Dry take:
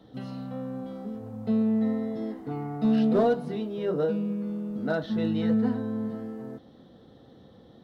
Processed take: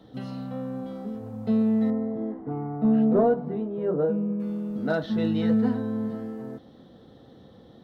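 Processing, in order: 1.90–4.40 s: low-pass 1.2 kHz 12 dB/octave; trim +2 dB

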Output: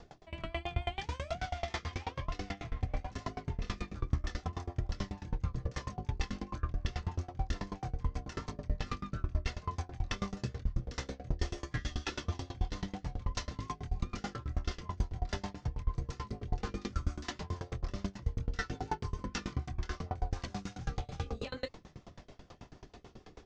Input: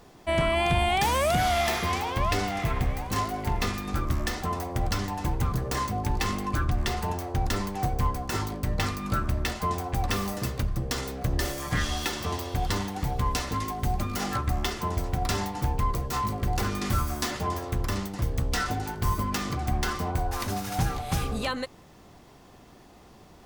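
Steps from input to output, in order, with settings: steep low-pass 6.7 kHz 36 dB/octave; reverse; compression 6:1, threshold -35 dBFS, peak gain reduction 14 dB; reverse; chorus voices 6, 0.11 Hz, delay 25 ms, depth 1.6 ms; rotary cabinet horn 6.7 Hz; sawtooth tremolo in dB decaying 9.2 Hz, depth 27 dB; trim +10.5 dB

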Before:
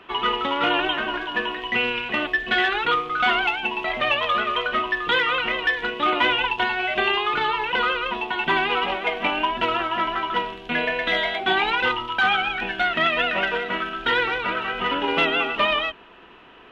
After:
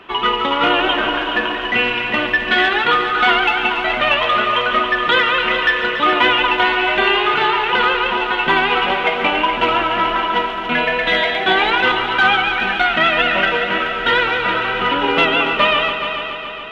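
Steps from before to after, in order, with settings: multi-head delay 141 ms, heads all three, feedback 60%, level -13 dB; trim +5.5 dB

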